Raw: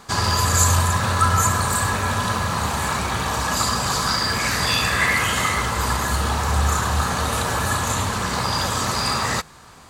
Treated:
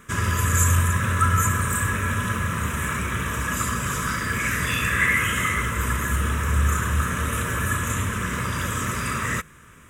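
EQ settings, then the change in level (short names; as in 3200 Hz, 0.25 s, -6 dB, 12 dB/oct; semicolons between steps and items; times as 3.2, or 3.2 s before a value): fixed phaser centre 1900 Hz, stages 4; 0.0 dB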